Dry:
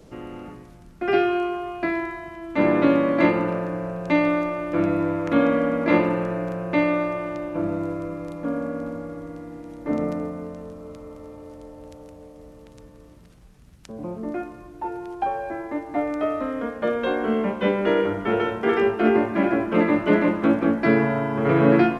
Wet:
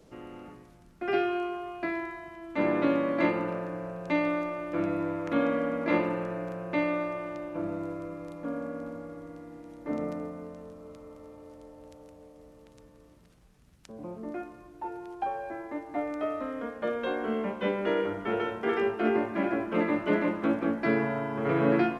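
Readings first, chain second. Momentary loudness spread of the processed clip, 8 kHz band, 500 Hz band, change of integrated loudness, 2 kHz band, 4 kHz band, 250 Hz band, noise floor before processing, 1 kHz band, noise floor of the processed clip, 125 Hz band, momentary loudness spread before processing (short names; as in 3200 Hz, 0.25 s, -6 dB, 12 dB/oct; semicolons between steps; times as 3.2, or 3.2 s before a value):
18 LU, n/a, -7.0 dB, -7.5 dB, -6.5 dB, -6.5 dB, -8.0 dB, -48 dBFS, -6.5 dB, -56 dBFS, -9.5 dB, 18 LU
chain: low shelf 200 Hz -4.5 dB; gain -6.5 dB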